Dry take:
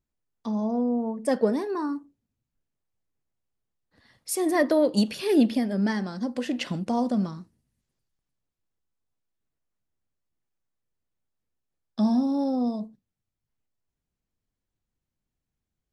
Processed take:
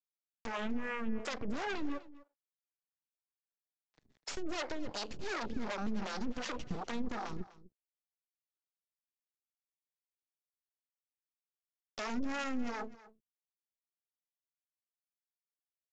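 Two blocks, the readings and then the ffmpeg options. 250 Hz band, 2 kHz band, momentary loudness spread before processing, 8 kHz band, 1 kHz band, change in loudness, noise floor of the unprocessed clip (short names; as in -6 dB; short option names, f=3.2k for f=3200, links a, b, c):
-15.5 dB, -4.0 dB, 12 LU, -11.0 dB, -7.5 dB, -14.0 dB, under -85 dBFS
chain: -filter_complex "[0:a]acompressor=threshold=-36dB:ratio=2,alimiter=level_in=5.5dB:limit=-24dB:level=0:latency=1:release=134,volume=-5.5dB,aeval=exprs='0.0335*(cos(1*acos(clip(val(0)/0.0335,-1,1)))-cos(1*PI/2))+0.0015*(cos(3*acos(clip(val(0)/0.0335,-1,1)))-cos(3*PI/2))+0.00168*(cos(5*acos(clip(val(0)/0.0335,-1,1)))-cos(5*PI/2))+0.0168*(cos(6*acos(clip(val(0)/0.0335,-1,1)))-cos(6*PI/2))':c=same,aresample=16000,aeval=exprs='sgn(val(0))*max(abs(val(0))-0.00126,0)':c=same,aresample=44100,acrossover=split=410[a][b];[a]aeval=exprs='val(0)*(1-1/2+1/2*cos(2*PI*2.7*n/s))':c=same[c];[b]aeval=exprs='val(0)*(1-1/2-1/2*cos(2*PI*2.7*n/s))':c=same[d];[c][d]amix=inputs=2:normalize=0,asplit=2[e][f];[f]aecho=0:1:250:0.119[g];[e][g]amix=inputs=2:normalize=0,volume=1.5dB"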